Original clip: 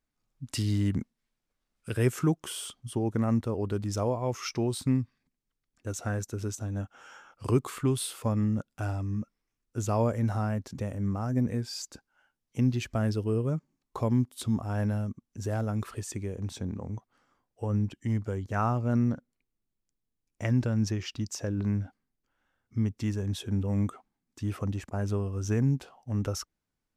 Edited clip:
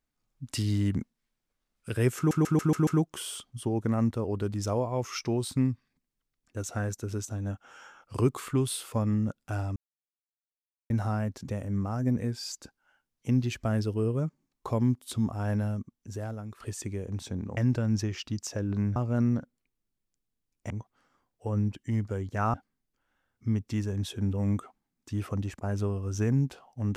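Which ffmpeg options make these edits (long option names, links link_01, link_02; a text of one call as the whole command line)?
ffmpeg -i in.wav -filter_complex "[0:a]asplit=13[link_01][link_02][link_03][link_04][link_05][link_06][link_07][link_08][link_09][link_10][link_11][link_12][link_13];[link_01]atrim=end=2.312[link_14];[link_02]atrim=start=2.168:end=2.312[link_15];[link_03]atrim=start=2.168:end=2.312[link_16];[link_04]atrim=start=2.168:end=2.312[link_17];[link_05]atrim=start=2.168:end=2.312[link_18];[link_06]atrim=start=2.168:end=9.06,asetpts=PTS-STARTPTS,afade=type=out:start_time=6.888:duration=0.004:curve=hsin[link_19];[link_07]atrim=start=9.06:end=10.2,asetpts=PTS-STARTPTS,volume=0[link_20];[link_08]atrim=start=10.2:end=15.9,asetpts=PTS-STARTPTS,afade=type=in:duration=0.004:curve=hsin,afade=type=out:start_time=4.88:duration=0.82:silence=0.199526[link_21];[link_09]atrim=start=15.9:end=16.872,asetpts=PTS-STARTPTS,afade=type=in:duration=0.004:curve=hsin:silence=0.199526[link_22];[link_10]atrim=start=20.448:end=21.842[link_23];[link_11]atrim=start=18.708:end=20.452[link_24];[link_12]atrim=start=16.868:end=18.712[link_25];[link_13]atrim=start=21.838[link_26];[link_14][link_15]acrossfade=duration=0.004:curve1=hsin:curve2=hsin[link_27];[link_27][link_16]acrossfade=duration=0.004:curve1=hsin:curve2=hsin[link_28];[link_28][link_17]acrossfade=duration=0.004:curve1=hsin:curve2=hsin[link_29];[link_29][link_18]acrossfade=duration=0.004:curve1=hsin:curve2=hsin[link_30];[link_19][link_20][link_21][link_22]concat=n=4:v=0:a=1[link_31];[link_30][link_31]acrossfade=duration=0.004:curve1=hsin:curve2=hsin[link_32];[link_32][link_23]acrossfade=duration=0.004:curve1=hsin:curve2=hsin[link_33];[link_33][link_24]acrossfade=duration=0.004:curve1=hsin:curve2=hsin[link_34];[link_34][link_25]acrossfade=duration=0.004:curve1=hsin:curve2=hsin[link_35];[link_35][link_26]acrossfade=duration=0.004:curve1=hsin:curve2=hsin" out.wav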